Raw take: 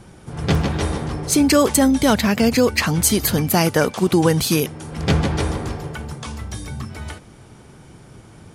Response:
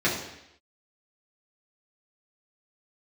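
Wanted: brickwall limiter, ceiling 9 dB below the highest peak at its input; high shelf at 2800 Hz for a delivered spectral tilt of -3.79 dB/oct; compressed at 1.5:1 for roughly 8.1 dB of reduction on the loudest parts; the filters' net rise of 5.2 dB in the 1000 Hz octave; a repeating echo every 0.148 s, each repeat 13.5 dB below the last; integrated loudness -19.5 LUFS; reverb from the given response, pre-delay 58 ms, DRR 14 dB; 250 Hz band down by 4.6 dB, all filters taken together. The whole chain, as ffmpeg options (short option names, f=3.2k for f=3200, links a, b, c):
-filter_complex "[0:a]equalizer=f=250:t=o:g=-6.5,equalizer=f=1k:t=o:g=6,highshelf=f=2.8k:g=8,acompressor=threshold=-29dB:ratio=1.5,alimiter=limit=-12.5dB:level=0:latency=1,aecho=1:1:148|296:0.211|0.0444,asplit=2[a][b];[1:a]atrim=start_sample=2205,adelay=58[c];[b][c]afir=irnorm=-1:irlink=0,volume=-28.5dB[d];[a][d]amix=inputs=2:normalize=0,volume=5.5dB"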